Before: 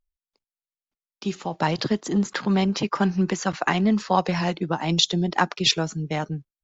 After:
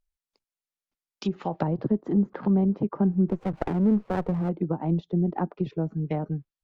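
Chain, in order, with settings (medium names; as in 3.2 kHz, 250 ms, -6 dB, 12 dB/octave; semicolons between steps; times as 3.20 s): low-pass that closes with the level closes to 470 Hz, closed at -21.5 dBFS; 3.28–4.49 s: sliding maximum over 17 samples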